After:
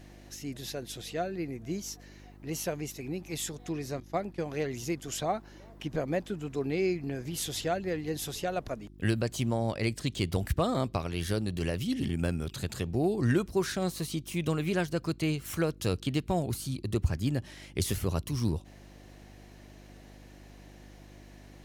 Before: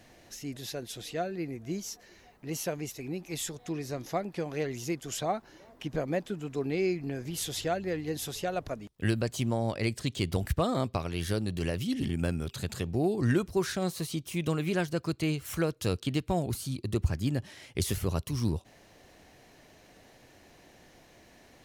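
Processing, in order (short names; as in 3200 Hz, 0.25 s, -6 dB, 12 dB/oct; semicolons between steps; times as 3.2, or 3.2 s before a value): 4–4.4 expander -34 dBFS; buzz 50 Hz, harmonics 7, -52 dBFS -4 dB/oct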